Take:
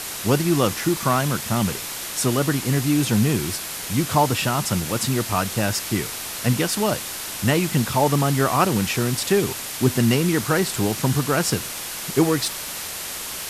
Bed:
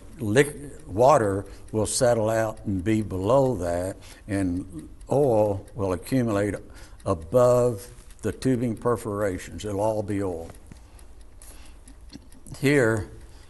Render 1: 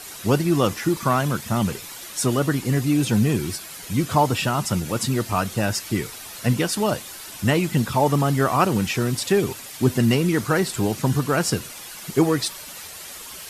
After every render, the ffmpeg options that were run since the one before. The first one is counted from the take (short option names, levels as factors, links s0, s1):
-af "afftdn=nr=10:nf=-32"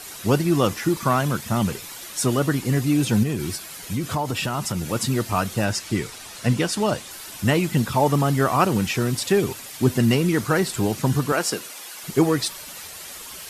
-filter_complex "[0:a]asettb=1/sr,asplit=3[s0][s1][s2];[s0]atrim=end=3.234[s3];[s1]atrim=start=3.23:end=4.89,asetpts=PTS-STARTPTS,afade=t=in:d=0.004:c=qsin,afade=t=out:st=1.656:d=0.004:c=qsin,acompressor=threshold=0.0891:ratio=4:attack=3.2:release=140:knee=1:detection=peak[s4];[s2]atrim=start=4.886[s5];[s3][s4]acrossfade=d=0.004:c1=hsin:c2=qsin[s6];[s6][s5]acrossfade=d=0.004:c1=qsin:c2=hsin,asettb=1/sr,asplit=3[s7][s8][s9];[s7]atrim=end=5.644[s10];[s8]atrim=start=5.64:end=7.11,asetpts=PTS-STARTPTS,afade=t=in:d=0.004:c=qsin,afade=t=out:st=1.466:d=0.004:c=qsin,lowpass=10000[s11];[s9]atrim=start=7.106[s12];[s10][s11]acrossfade=d=0.004:c1=hsin:c2=qsin[s13];[s13][s12]acrossfade=d=0.004:c1=qsin:c2=hsin,asettb=1/sr,asplit=3[s14][s15][s16];[s14]atrim=end=11.324[s17];[s15]atrim=start=11.32:end=12.04,asetpts=PTS-STARTPTS,afade=t=in:d=0.004:c=qsin,afade=t=out:st=0.716:d=0.004:c=qsin,highpass=310[s18];[s16]atrim=start=12.036[s19];[s17][s18]acrossfade=d=0.004:c1=hsin:c2=qsin[s20];[s20][s19]acrossfade=d=0.004:c1=qsin:c2=hsin"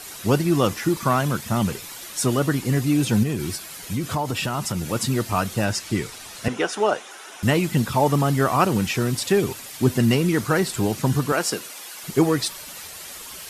-filter_complex "[0:a]asettb=1/sr,asplit=3[s0][s1][s2];[s0]atrim=end=6.484[s3];[s1]atrim=start=6.48:end=7.43,asetpts=PTS-STARTPTS,afade=t=in:d=0.004:c=qsin,afade=t=out:st=0.946:d=0.004:c=qsin,highpass=360,equalizer=f=410:t=q:w=4:g=6,equalizer=f=760:t=q:w=4:g=6,equalizer=f=1400:t=q:w=4:g=6,equalizer=f=4500:t=q:w=4:g=-10,equalizer=f=8000:t=q:w=4:g=-8,lowpass=f=9300:w=0.5412,lowpass=f=9300:w=1.3066[s4];[s2]atrim=start=7.426[s5];[s3][s4]acrossfade=d=0.004:c1=hsin:c2=qsin[s6];[s6][s5]acrossfade=d=0.004:c1=qsin:c2=hsin"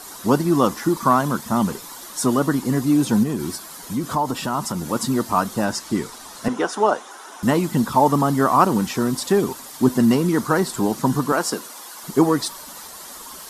-af "equalizer=f=100:t=o:w=0.67:g=-11,equalizer=f=250:t=o:w=0.67:g=6,equalizer=f=1000:t=o:w=0.67:g=8,equalizer=f=2500:t=o:w=0.67:g=-9"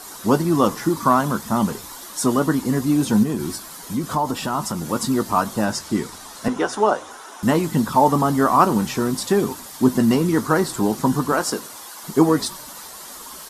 -filter_complex "[0:a]asplit=2[s0][s1];[s1]adelay=19,volume=0.251[s2];[s0][s2]amix=inputs=2:normalize=0,asplit=4[s3][s4][s5][s6];[s4]adelay=98,afreqshift=-61,volume=0.0631[s7];[s5]adelay=196,afreqshift=-122,volume=0.0272[s8];[s6]adelay=294,afreqshift=-183,volume=0.0116[s9];[s3][s7][s8][s9]amix=inputs=4:normalize=0"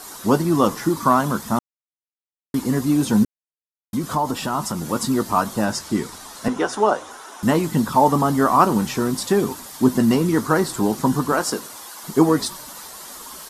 -filter_complex "[0:a]asplit=5[s0][s1][s2][s3][s4];[s0]atrim=end=1.59,asetpts=PTS-STARTPTS,afade=t=out:st=1.586:d=0.004:c=hsin[s5];[s1]atrim=start=1.59:end=2.54,asetpts=PTS-STARTPTS,volume=0[s6];[s2]atrim=start=2.54:end=3.25,asetpts=PTS-STARTPTS,afade=t=in:d=0.004:c=hsin,afade=t=out:st=0.706:d=0.004:c=hsin[s7];[s3]atrim=start=3.25:end=3.93,asetpts=PTS-STARTPTS,volume=0[s8];[s4]atrim=start=3.93,asetpts=PTS-STARTPTS,afade=t=in:d=0.004:c=hsin[s9];[s5][s6][s7][s8][s9]concat=n=5:v=0:a=1"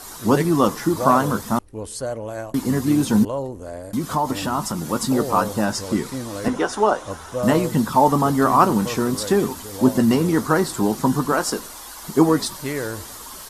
-filter_complex "[1:a]volume=0.447[s0];[0:a][s0]amix=inputs=2:normalize=0"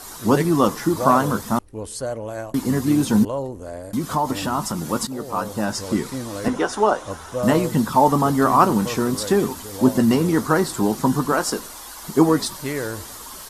-filter_complex "[0:a]asplit=2[s0][s1];[s0]atrim=end=5.07,asetpts=PTS-STARTPTS,afade=t=out:st=5.066:d=0.004:c=hsin:silence=0.211349[s2];[s1]atrim=start=5.07,asetpts=PTS-STARTPTS,afade=t=in:d=0.81:silence=0.211349[s3];[s2][s3]concat=n=2:v=0:a=1"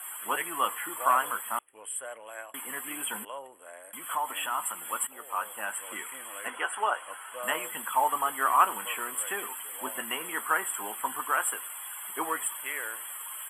-af "highpass=1400,afftfilt=real='re*(1-between(b*sr/4096,3400,7500))':imag='im*(1-between(b*sr/4096,3400,7500))':win_size=4096:overlap=0.75"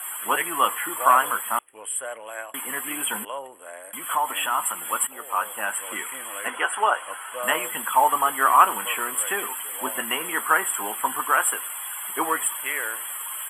-af "volume=2.24,alimiter=limit=0.708:level=0:latency=1"